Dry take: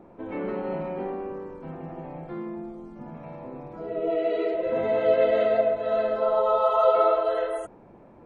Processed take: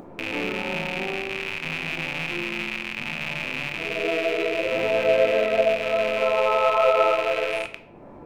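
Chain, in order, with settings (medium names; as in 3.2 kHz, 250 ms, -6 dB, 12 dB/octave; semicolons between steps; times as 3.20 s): rattle on loud lows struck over -48 dBFS, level -17 dBFS; upward compressor, threshold -36 dBFS; simulated room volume 120 m³, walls mixed, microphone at 0.35 m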